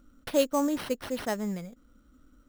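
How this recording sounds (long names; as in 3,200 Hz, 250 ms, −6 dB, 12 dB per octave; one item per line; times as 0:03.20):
aliases and images of a low sample rate 7,100 Hz, jitter 0%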